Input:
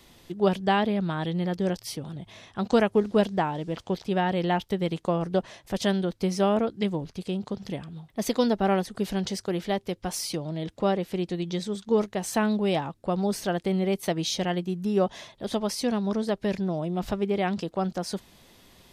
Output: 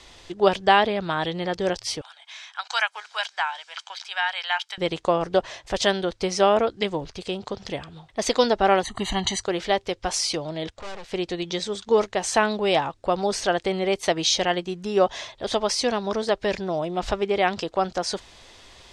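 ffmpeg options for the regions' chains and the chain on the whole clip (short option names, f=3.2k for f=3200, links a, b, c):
-filter_complex "[0:a]asettb=1/sr,asplit=3[a][b][c];[a]atrim=end=2.014[d];[b]atrim=start=2.01:end=4.78,asetpts=PTS-STARTPTS,afade=t=in:d=0.004:c=qsin,afade=t=out:st=2.766:d=0.004:c=qsin,highpass=f=1.1k:w=0.5412,highpass=f=1.1k:w=1.3066,aecho=1:1:1.3:0.36,atrim=end_sample=122157[e];[c]atrim=start=4.776[f];[d][e]acrossfade=d=0.004:c1=hsin:c2=qsin[g];[g][f]acrossfade=d=0.004:c1=qsin:c2=hsin,asettb=1/sr,asplit=3[h][i][j];[h]atrim=end=8.834[k];[i]atrim=start=8.83:end=9.43,asetpts=PTS-STARTPTS,afade=t=in:d=0.004:c=qsin,afade=t=out:st=0.596:d=0.004:c=qsin,asuperstop=centerf=5300:order=20:qfactor=4.7,aecho=1:1:1:0.97,atrim=end_sample=26460[l];[j]atrim=start=9.426[m];[k][l]acrossfade=d=0.004:c1=hsin:c2=qsin[n];[n][m]acrossfade=d=0.004:c1=qsin:c2=hsin,asettb=1/sr,asplit=3[o][p][q];[o]atrim=end=10.704[r];[p]atrim=start=10.7:end=11.13,asetpts=PTS-STARTPTS,afade=t=in:d=0.004:c=qsin,afade=t=out:st=0.426:d=0.004:c=qsin,equalizer=f=340:t=o:w=0.42:g=-14,aeval=exprs='(tanh(100*val(0)+0.65)-tanh(0.65))/100':c=same[s];[q]atrim=start=11.126[t];[r][s]acrossfade=d=0.004:c1=hsin:c2=qsin[u];[u][t]acrossfade=d=0.004:c1=qsin:c2=hsin,lowpass=f=8k:w=0.5412,lowpass=f=8k:w=1.3066,equalizer=f=190:w=0.9:g=-14,volume=8.5dB"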